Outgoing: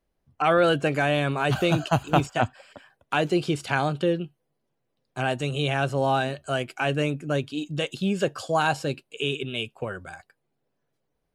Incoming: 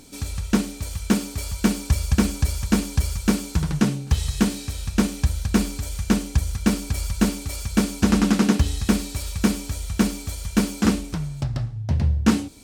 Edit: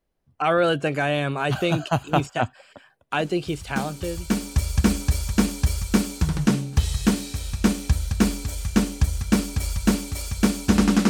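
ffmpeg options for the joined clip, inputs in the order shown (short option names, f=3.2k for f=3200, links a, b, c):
-filter_complex "[0:a]apad=whole_dur=11.09,atrim=end=11.09,atrim=end=4.88,asetpts=PTS-STARTPTS[a];[1:a]atrim=start=0.44:end=8.43,asetpts=PTS-STARTPTS[b];[a][b]acrossfade=d=1.78:c1=tri:c2=tri"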